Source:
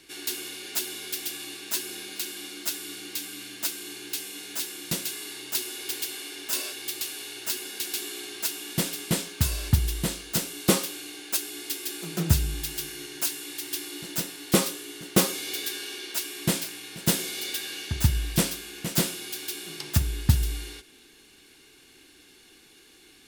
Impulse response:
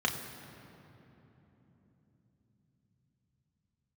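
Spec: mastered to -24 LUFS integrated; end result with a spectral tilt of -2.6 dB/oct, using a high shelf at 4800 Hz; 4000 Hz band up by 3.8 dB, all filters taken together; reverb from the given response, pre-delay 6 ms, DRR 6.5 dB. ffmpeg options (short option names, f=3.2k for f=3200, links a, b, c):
-filter_complex "[0:a]equalizer=f=4k:t=o:g=3,highshelf=f=4.8k:g=3.5,asplit=2[a][b];[1:a]atrim=start_sample=2205,adelay=6[c];[b][c]afir=irnorm=-1:irlink=0,volume=-15dB[d];[a][d]amix=inputs=2:normalize=0,volume=2dB"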